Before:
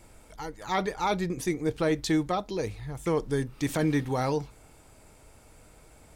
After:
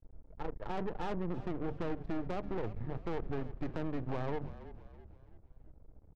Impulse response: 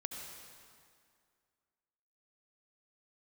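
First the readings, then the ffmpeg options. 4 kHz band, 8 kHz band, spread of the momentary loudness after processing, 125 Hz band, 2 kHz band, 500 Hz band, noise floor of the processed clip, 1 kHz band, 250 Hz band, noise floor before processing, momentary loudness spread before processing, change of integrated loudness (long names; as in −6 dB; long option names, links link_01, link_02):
−17.0 dB, below −25 dB, 15 LU, −8.0 dB, −13.0 dB, −10.0 dB, −62 dBFS, −11.0 dB, −10.0 dB, −55 dBFS, 8 LU, −10.5 dB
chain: -filter_complex "[0:a]bandreject=frequency=50:width_type=h:width=6,bandreject=frequency=100:width_type=h:width=6,bandreject=frequency=150:width_type=h:width=6,bandreject=frequency=200:width_type=h:width=6,agate=range=-10dB:threshold=-44dB:ratio=16:detection=peak,lowpass=2400,lowshelf=frequency=74:gain=11.5,alimiter=limit=-20.5dB:level=0:latency=1:release=159,acrossover=split=390|780[link_01][link_02][link_03];[link_01]acompressor=threshold=-38dB:ratio=4[link_04];[link_02]acompressor=threshold=-37dB:ratio=4[link_05];[link_03]acompressor=threshold=-46dB:ratio=4[link_06];[link_04][link_05][link_06]amix=inputs=3:normalize=0,aeval=exprs='max(val(0),0)':channel_layout=same,adynamicsmooth=sensitivity=5:basefreq=540,asoftclip=type=tanh:threshold=-32.5dB,asplit=2[link_07][link_08];[link_08]asplit=4[link_09][link_10][link_11][link_12];[link_09]adelay=330,afreqshift=-35,volume=-15dB[link_13];[link_10]adelay=660,afreqshift=-70,volume=-22.3dB[link_14];[link_11]adelay=990,afreqshift=-105,volume=-29.7dB[link_15];[link_12]adelay=1320,afreqshift=-140,volume=-37dB[link_16];[link_13][link_14][link_15][link_16]amix=inputs=4:normalize=0[link_17];[link_07][link_17]amix=inputs=2:normalize=0,volume=6dB"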